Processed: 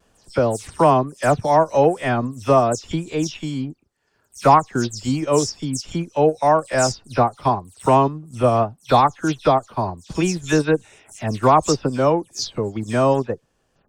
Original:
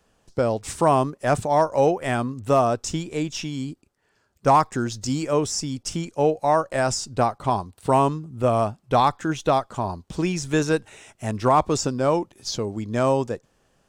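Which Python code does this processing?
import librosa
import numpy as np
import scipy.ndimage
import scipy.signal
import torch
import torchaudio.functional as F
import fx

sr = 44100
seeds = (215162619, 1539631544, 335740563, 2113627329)

y = fx.spec_delay(x, sr, highs='early', ms=130)
y = fx.transient(y, sr, attack_db=0, sustain_db=-7)
y = fx.vibrato(y, sr, rate_hz=0.71, depth_cents=21.0)
y = y * librosa.db_to_amplitude(4.0)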